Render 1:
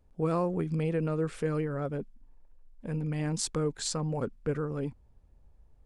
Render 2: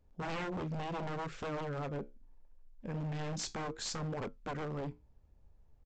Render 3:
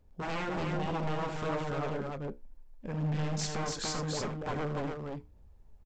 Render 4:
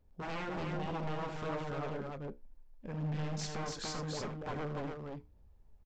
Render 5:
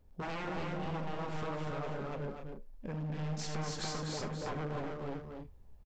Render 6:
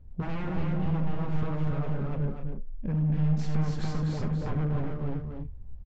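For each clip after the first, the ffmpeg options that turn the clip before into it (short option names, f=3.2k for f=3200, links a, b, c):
-af "flanger=delay=9.7:depth=5.5:regen=-66:speed=0.71:shape=sinusoidal,aresample=16000,aeval=exprs='0.02*(abs(mod(val(0)/0.02+3,4)-2)-1)':c=same,aresample=44100,volume=1dB"
-af "aecho=1:1:78.72|288.6:0.355|0.708,aphaser=in_gain=1:out_gain=1:delay=4.9:decay=0.21:speed=1.3:type=sinusoidal,volume=2.5dB"
-af "equalizer=f=7.8k:w=2:g=-4,volume=-4.5dB"
-filter_complex "[0:a]acompressor=threshold=-40dB:ratio=6,asplit=2[a][b];[b]aecho=0:1:244.9|277:0.447|0.282[c];[a][c]amix=inputs=2:normalize=0,volume=4dB"
-af "bass=f=250:g=15,treble=f=4k:g=-10"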